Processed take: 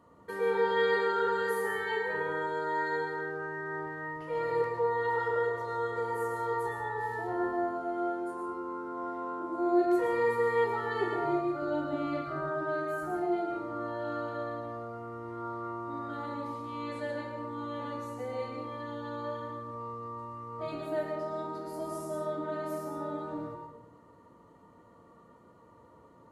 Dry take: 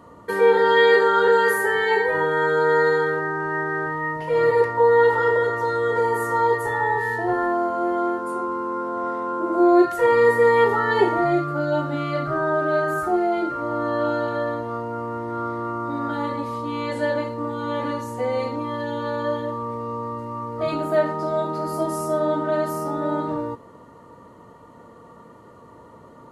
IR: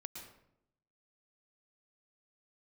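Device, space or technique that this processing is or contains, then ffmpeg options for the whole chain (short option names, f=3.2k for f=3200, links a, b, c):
bathroom: -filter_complex "[1:a]atrim=start_sample=2205[a];[0:a][a]afir=irnorm=-1:irlink=0,asettb=1/sr,asplit=3[b][c][d];[b]atrim=end=11.624[e];[c]atrim=start=11.62:end=12.22,asetpts=PTS-STARTPTS,afade=t=in:d=0.004:c=qsin,afade=t=out:st=0.596:d=0.004:c=qsin,lowshelf=f=460:g=7.5[f];[d]atrim=start=12.216[g];[e][f]acrossfade=d=0.004:c1=hsin:c2=qsin[h];[h][g]acrossfade=d=0.004:c1=qsin:c2=hsin,volume=-8dB"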